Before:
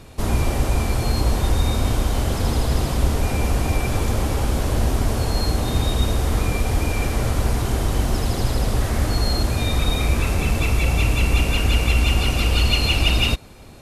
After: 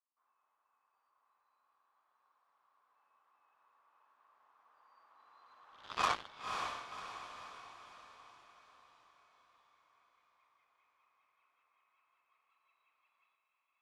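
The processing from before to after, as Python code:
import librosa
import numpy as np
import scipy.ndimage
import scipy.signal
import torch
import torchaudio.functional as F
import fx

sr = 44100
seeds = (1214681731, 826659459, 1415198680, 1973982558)

y = fx.doppler_pass(x, sr, speed_mps=29, closest_m=1.5, pass_at_s=6.07)
y = fx.ladder_bandpass(y, sr, hz=1200.0, resonance_pct=70)
y = fx.cheby_harmonics(y, sr, harmonics=(5, 7), levels_db=(-30, -14), full_scale_db=-31.5)
y = fx.echo_diffused(y, sr, ms=544, feedback_pct=49, wet_db=-5.0)
y = F.gain(torch.from_numpy(y), 12.0).numpy()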